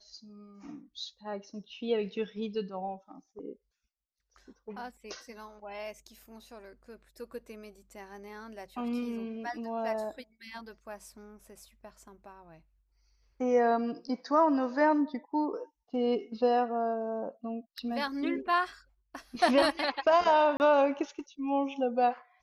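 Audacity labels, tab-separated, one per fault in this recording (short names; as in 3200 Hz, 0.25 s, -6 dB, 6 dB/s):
20.570000	20.600000	gap 29 ms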